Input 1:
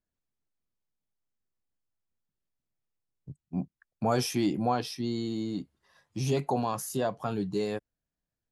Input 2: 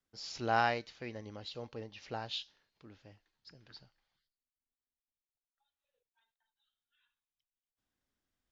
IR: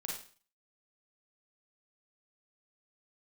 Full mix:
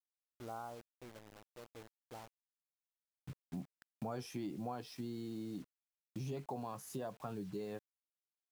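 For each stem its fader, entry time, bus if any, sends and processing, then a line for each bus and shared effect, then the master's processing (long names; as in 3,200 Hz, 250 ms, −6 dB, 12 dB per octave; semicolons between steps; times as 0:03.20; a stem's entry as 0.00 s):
−2.5 dB, 0.00 s, no send, high-shelf EQ 2,700 Hz −7.5 dB
−11.0 dB, 0.00 s, no send, Butterworth low-pass 1,400 Hz 96 dB per octave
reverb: not used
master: bit reduction 9 bits; downward compressor 3 to 1, threshold −43 dBFS, peak gain reduction 13.5 dB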